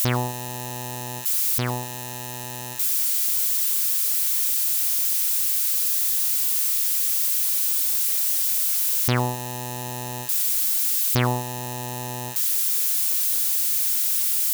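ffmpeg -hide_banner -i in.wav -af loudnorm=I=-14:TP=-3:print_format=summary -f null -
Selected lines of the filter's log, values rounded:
Input Integrated:    -20.3 LUFS
Input True Peak:      -7.5 dBTP
Input LRA:             3.5 LU
Input Threshold:     -30.6 LUFS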